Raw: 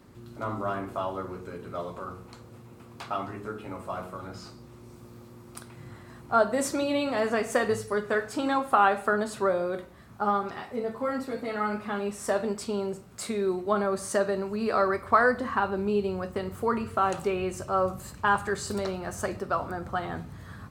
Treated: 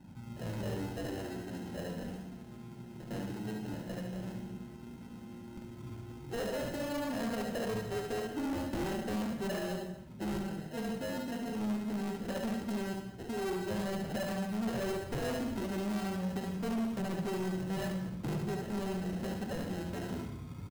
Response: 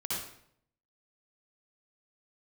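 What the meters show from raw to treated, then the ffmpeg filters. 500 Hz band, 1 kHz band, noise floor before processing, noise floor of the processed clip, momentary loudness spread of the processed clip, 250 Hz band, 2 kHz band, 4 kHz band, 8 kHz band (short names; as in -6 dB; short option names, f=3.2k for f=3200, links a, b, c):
-10.0 dB, -15.5 dB, -49 dBFS, -48 dBFS, 11 LU, -2.0 dB, -12.0 dB, -4.0 dB, -9.0 dB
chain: -filter_complex "[0:a]equalizer=f=2.4k:t=o:w=2.7:g=-14.5,flanger=delay=10:depth=7.6:regen=86:speed=0.58:shape=triangular,acrusher=samples=38:mix=1:aa=0.000001,flanger=delay=1.1:depth=5.2:regen=-40:speed=0.14:shape=triangular,equalizer=f=190:t=o:w=1.8:g=8.5,aecho=1:1:71:0.501,asoftclip=type=tanh:threshold=-36.5dB,asplit=2[a][b];[1:a]atrim=start_sample=2205,adelay=58[c];[b][c]afir=irnorm=-1:irlink=0,volume=-14.5dB[d];[a][d]amix=inputs=2:normalize=0,volume=4dB"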